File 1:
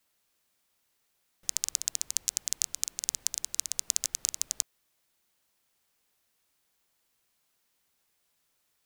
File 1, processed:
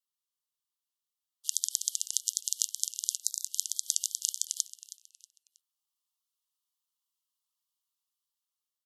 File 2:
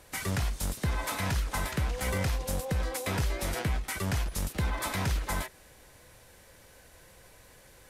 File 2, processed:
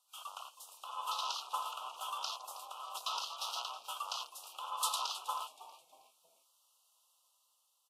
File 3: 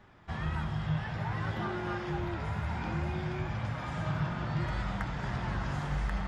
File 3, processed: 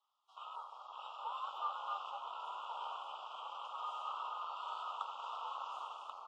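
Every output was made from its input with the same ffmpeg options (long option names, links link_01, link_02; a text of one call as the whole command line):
ffmpeg -i in.wav -filter_complex "[0:a]dynaudnorm=framelen=360:gausssize=5:maxgain=4dB,highpass=frequency=1000:width=0.5412,highpass=frequency=1000:width=1.3066,afwtdn=0.0112,asuperstop=centerf=1900:order=12:qfactor=1.3,asplit=4[link_01][link_02][link_03][link_04];[link_02]adelay=319,afreqshift=-120,volume=-16dB[link_05];[link_03]adelay=638,afreqshift=-240,volume=-25.4dB[link_06];[link_04]adelay=957,afreqshift=-360,volume=-34.7dB[link_07];[link_01][link_05][link_06][link_07]amix=inputs=4:normalize=0" -ar 48000 -c:a wmav2 -b:a 64k out.wma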